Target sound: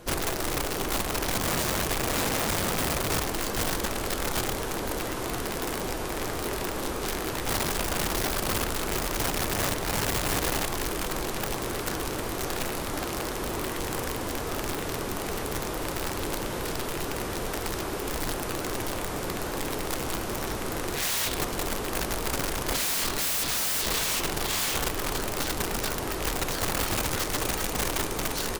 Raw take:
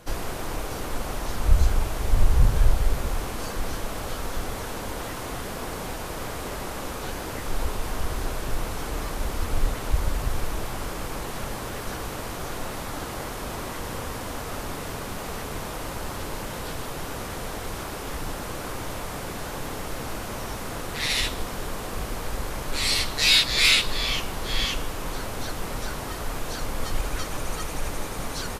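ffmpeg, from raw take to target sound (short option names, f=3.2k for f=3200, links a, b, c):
-af "equalizer=f=360:w=2.2:g=7.5,aeval=exprs='(mod(13.3*val(0)+1,2)-1)/13.3':c=same"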